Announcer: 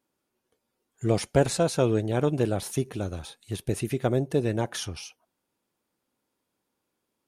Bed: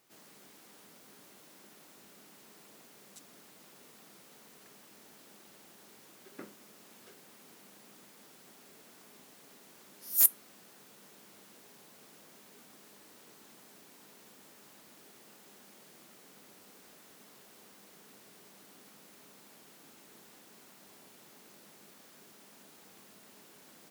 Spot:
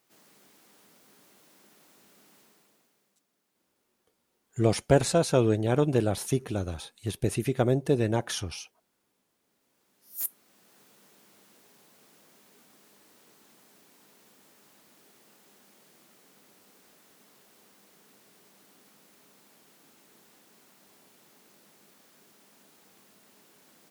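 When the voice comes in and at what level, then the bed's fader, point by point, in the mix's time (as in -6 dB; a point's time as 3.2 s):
3.55 s, +0.5 dB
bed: 2.38 s -2.5 dB
3.27 s -21 dB
9.39 s -21 dB
10.78 s -2.5 dB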